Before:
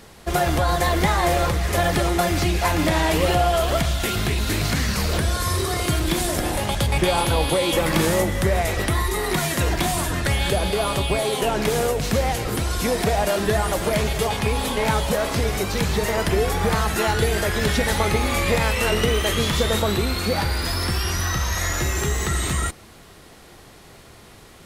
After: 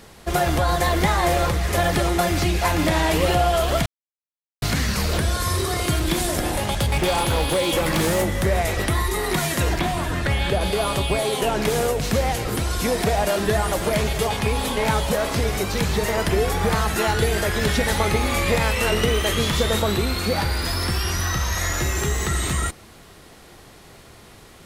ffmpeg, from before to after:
-filter_complex "[0:a]asplit=3[a][b][c];[a]afade=t=out:st=6.66:d=0.02[d];[b]aeval=exprs='0.2*(abs(mod(val(0)/0.2+3,4)-2)-1)':c=same,afade=t=in:st=6.66:d=0.02,afade=t=out:st=8.45:d=0.02[e];[c]afade=t=in:st=8.45:d=0.02[f];[d][e][f]amix=inputs=3:normalize=0,asettb=1/sr,asplit=3[g][h][i];[g]atrim=end=9.794[j];[h]atrim=start=9.79:end=10.61,asetpts=PTS-STARTPTS,afade=t=in:d=0.004:c=qsin,afade=t=out:st=0.816:d=0.004:c=qsin,acrossover=split=3900[k][l];[l]acompressor=threshold=-39dB:ratio=4:attack=1:release=60[m];[k][m]amix=inputs=2:normalize=0[n];[i]atrim=start=10.606[o];[j][n]acrossfade=d=0.004:c1=hsin:c2=qsin[p];[p][o]acrossfade=d=0.004:c1=qsin:c2=hsin,asplit=3[q][r][s];[q]atrim=end=3.86,asetpts=PTS-STARTPTS,afade=t=out:st=3.856:d=0.004:c=hsin[t];[r]atrim=start=3.86:end=4.62,asetpts=PTS-STARTPTS,volume=0[u];[s]atrim=start=4.62,asetpts=PTS-STARTPTS,afade=t=in:d=0.004:c=hsin[v];[t][u][v]concat=n=3:v=0:a=1"

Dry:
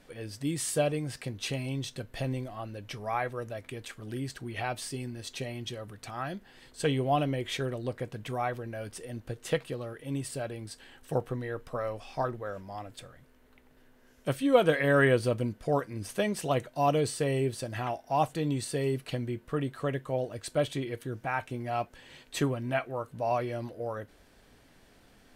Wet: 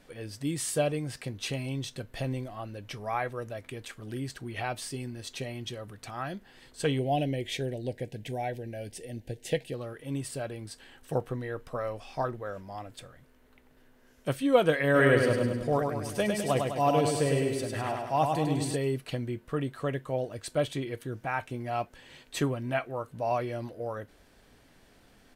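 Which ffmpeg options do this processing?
-filter_complex "[0:a]asettb=1/sr,asplit=3[a][b][c];[a]atrim=end=6.994[d];[b]atrim=start=6.99:end=9.74,asetpts=PTS-STARTPTS,afade=t=in:d=0.004:c=qsin,afade=t=out:st=2.746:d=0.004:c=qsin,asuperstop=centerf=1200:order=4:qfactor=1.2[e];[c]atrim=start=9.736[f];[d][e]acrossfade=d=0.004:c1=hsin:c2=qsin[g];[g][f]acrossfade=d=0.004:c1=qsin:c2=hsin,asplit=3[h][i][j];[h]afade=t=out:st=14.94:d=0.02[k];[i]aecho=1:1:102|204|306|408|510|612|714:0.631|0.341|0.184|0.0994|0.0537|0.029|0.0156,afade=t=in:st=14.94:d=0.02,afade=t=out:st=18.75:d=0.02[l];[j]afade=t=in:st=18.75:d=0.02[m];[k][l][m]amix=inputs=3:normalize=0"

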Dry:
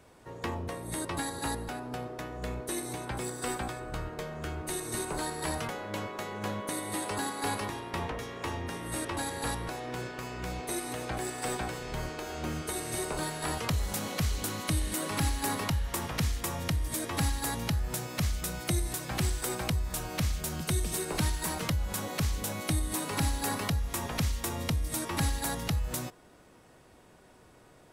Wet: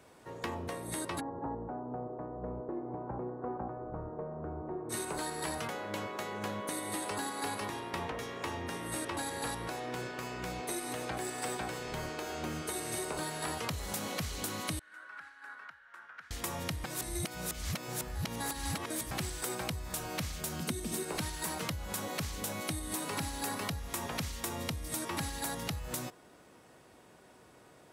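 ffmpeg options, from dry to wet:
-filter_complex "[0:a]asplit=3[a][b][c];[a]afade=t=out:st=1.19:d=0.02[d];[b]lowpass=f=1k:w=0.5412,lowpass=f=1k:w=1.3066,afade=t=in:st=1.19:d=0.02,afade=t=out:st=4.89:d=0.02[e];[c]afade=t=in:st=4.89:d=0.02[f];[d][e][f]amix=inputs=3:normalize=0,asettb=1/sr,asplit=3[g][h][i];[g]atrim=end=14.794[j];[h]atrim=start=14.79:end=16.31,asetpts=PTS-STARTPTS,afade=t=in:d=0.004:c=qsin,afade=t=out:st=1.516:d=0.004:c=qsin,bandpass=f=1.5k:t=q:w=10[k];[i]atrim=start=16.306[l];[j][k]acrossfade=d=0.004:c1=hsin:c2=qsin[m];[m][l]acrossfade=d=0.004:c1=qsin:c2=hsin,asettb=1/sr,asplit=3[n][o][p];[n]atrim=end=20.624[q];[o]atrim=start=20.62:end=21.03,asetpts=PTS-STARTPTS,afade=t=in:d=0.004:c=qsin,afade=t=out:st=0.406:d=0.004:c=qsin,equalizer=f=240:t=o:w=0.77:g=12[r];[p]atrim=start=21.026[s];[q][r]acrossfade=d=0.004:c1=hsin:c2=qsin[t];[t][s]acrossfade=d=0.004:c1=qsin:c2=hsin,asplit=3[u][v][w];[u]atrim=end=16.842[x];[v]atrim=start=16.838:end=19.112,asetpts=PTS-STARTPTS,areverse[y];[w]atrim=start=19.108[z];[x][y]acrossfade=d=0.004:c1=hsin:c2=hsin[aa];[aa][z]acrossfade=d=0.004:c1=hsin:c2=hsin,highpass=f=140:p=1,acompressor=threshold=-33dB:ratio=4"

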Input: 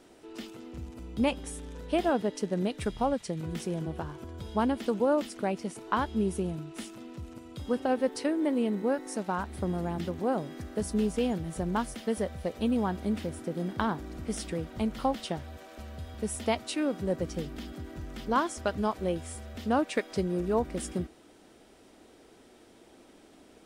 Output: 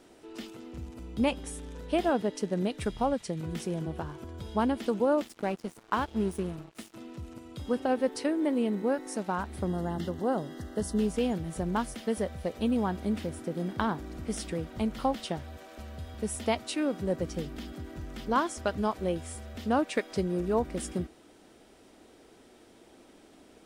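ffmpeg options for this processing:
-filter_complex "[0:a]asettb=1/sr,asplit=3[a][b][c];[a]atrim=end=5.224[d];[b]atrim=start=5.22:end=6.94,asetpts=PTS-STARTPTS,afade=t=in:d=0.004:c=qsin,afade=t=out:st=1.716:d=0.004:c=qsin,aeval=exprs='sgn(val(0))*max(abs(val(0))-0.00708,0)':c=same[e];[c]atrim=start=6.936[f];[d][e]acrossfade=d=0.004:c1=hsin:c2=qsin[g];[g][f]acrossfade=d=0.004:c1=qsin:c2=hsin,asettb=1/sr,asplit=3[h][i][j];[h]atrim=end=9.674[k];[i]atrim=start=9.67:end=11,asetpts=PTS-STARTPTS,afade=t=in:d=0.004:c=qsin,afade=t=out:st=1.326:d=0.004:c=qsin,asuperstop=centerf=2400:order=12:qfactor=4.3[l];[j]atrim=start=10.996[m];[k][l]acrossfade=d=0.004:c1=hsin:c2=qsin[n];[n][m]acrossfade=d=0.004:c1=qsin:c2=hsin"

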